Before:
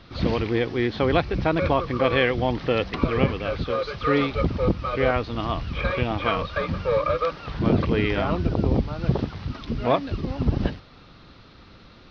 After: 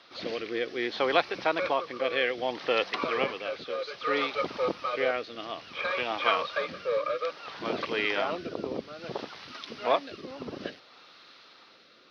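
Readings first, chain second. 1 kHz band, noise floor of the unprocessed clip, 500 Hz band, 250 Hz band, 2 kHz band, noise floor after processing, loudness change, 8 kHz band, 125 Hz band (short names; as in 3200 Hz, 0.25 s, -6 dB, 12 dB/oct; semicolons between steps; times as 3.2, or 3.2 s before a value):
-3.5 dB, -49 dBFS, -5.5 dB, -13.0 dB, -2.0 dB, -56 dBFS, -6.0 dB, n/a, -25.5 dB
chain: HPF 530 Hz 12 dB/oct; high shelf 5000 Hz +6.5 dB; rotary speaker horn 0.6 Hz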